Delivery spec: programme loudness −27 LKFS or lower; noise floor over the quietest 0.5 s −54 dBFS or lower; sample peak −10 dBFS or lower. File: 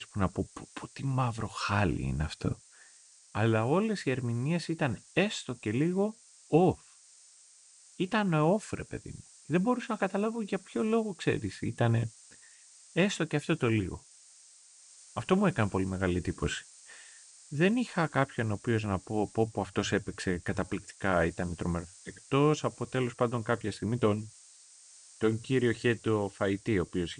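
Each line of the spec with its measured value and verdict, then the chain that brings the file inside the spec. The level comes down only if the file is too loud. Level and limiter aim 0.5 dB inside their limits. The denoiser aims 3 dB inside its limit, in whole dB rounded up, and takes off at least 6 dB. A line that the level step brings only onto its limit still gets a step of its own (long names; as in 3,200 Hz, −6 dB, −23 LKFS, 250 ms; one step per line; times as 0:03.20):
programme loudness −31.0 LKFS: in spec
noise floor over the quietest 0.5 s −58 dBFS: in spec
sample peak −12.0 dBFS: in spec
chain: no processing needed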